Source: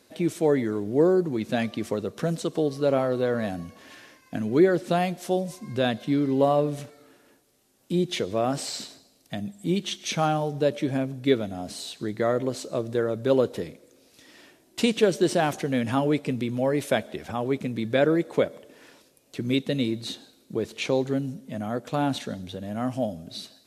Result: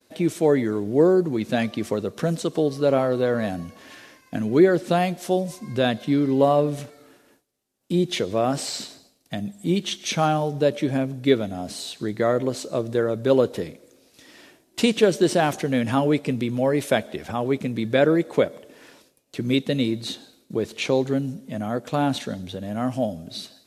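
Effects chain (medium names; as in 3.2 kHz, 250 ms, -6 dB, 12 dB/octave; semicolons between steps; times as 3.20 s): expander -55 dBFS; trim +3 dB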